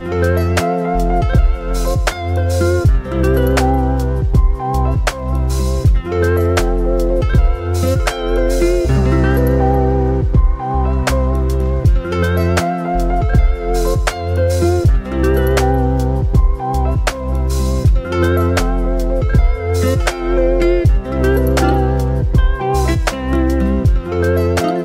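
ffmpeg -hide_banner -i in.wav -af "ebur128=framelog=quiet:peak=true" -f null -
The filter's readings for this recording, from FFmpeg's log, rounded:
Integrated loudness:
  I:         -15.7 LUFS
  Threshold: -25.7 LUFS
Loudness range:
  LRA:         1.2 LU
  Threshold: -35.7 LUFS
  LRA low:   -16.2 LUFS
  LRA high:  -15.0 LUFS
True peak:
  Peak:       -2.6 dBFS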